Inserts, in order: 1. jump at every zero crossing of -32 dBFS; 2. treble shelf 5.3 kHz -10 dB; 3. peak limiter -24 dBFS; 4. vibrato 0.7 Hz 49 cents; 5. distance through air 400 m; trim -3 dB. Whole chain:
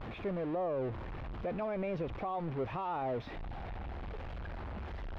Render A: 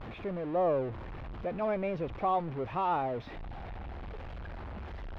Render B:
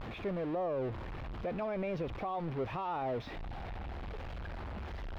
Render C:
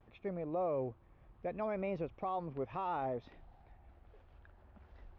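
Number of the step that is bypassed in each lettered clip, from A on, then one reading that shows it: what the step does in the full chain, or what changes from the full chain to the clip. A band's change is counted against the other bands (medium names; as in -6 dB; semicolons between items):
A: 3, crest factor change +4.5 dB; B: 2, 4 kHz band +3.0 dB; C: 1, distortion -9 dB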